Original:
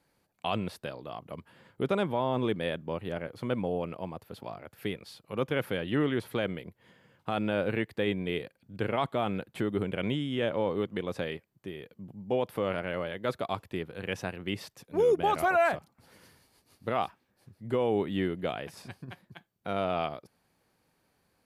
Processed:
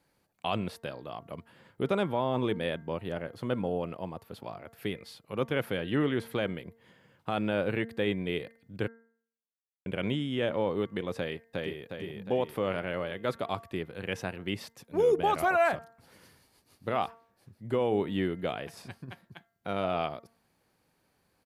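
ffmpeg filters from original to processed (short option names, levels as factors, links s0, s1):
-filter_complex "[0:a]asettb=1/sr,asplit=3[s0][s1][s2];[s0]atrim=end=3.104[s3];[s1]atrim=start=3.1:end=4.2,asetpts=PTS-STARTPTS,afade=t=in:d=0.004:c=qsin,afade=t=out:st=1.096:d=0.004:c=qsin,bandreject=f=2300:w=12[s4];[s2]atrim=start=4.196[s5];[s3][s4]acrossfade=d=0.004:c1=hsin:c2=qsin[s6];[s6][s5]acrossfade=d=0.004:c1=qsin:c2=hsin,asplit=2[s7][s8];[s8]afade=t=in:st=11.17:d=0.01,afade=t=out:st=11.87:d=0.01,aecho=0:1:360|720|1080|1440|1800|2160|2520:0.891251|0.445625|0.222813|0.111406|0.0557032|0.0278516|0.0139258[s9];[s7][s9]amix=inputs=2:normalize=0,asplit=3[s10][s11][s12];[s10]atrim=end=8.88,asetpts=PTS-STARTPTS,afade=t=out:st=8.876:d=0.004:c=hsin[s13];[s11]atrim=start=8.88:end=9.86,asetpts=PTS-STARTPTS,volume=0[s14];[s12]atrim=start=9.86,asetpts=PTS-STARTPTS,afade=t=in:d=0.004:c=hsin[s15];[s13][s14][s15]concat=n=3:v=0:a=1,bandreject=f=228.6:t=h:w=4,bandreject=f=457.2:t=h:w=4,bandreject=f=685.8:t=h:w=4,bandreject=f=914.4:t=h:w=4,bandreject=f=1143:t=h:w=4,bandreject=f=1371.6:t=h:w=4,bandreject=f=1600.2:t=h:w=4,bandreject=f=1828.8:t=h:w=4,bandreject=f=2057.4:t=h:w=4"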